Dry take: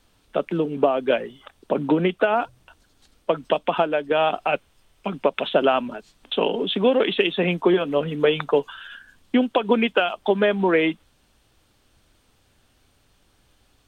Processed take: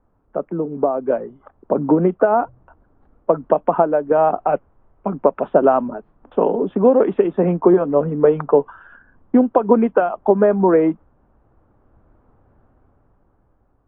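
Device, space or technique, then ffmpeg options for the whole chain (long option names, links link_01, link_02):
action camera in a waterproof case: -af "lowpass=frequency=1200:width=0.5412,lowpass=frequency=1200:width=1.3066,dynaudnorm=framelen=270:gausssize=11:maxgain=11.5dB" -ar 24000 -c:a aac -b:a 48k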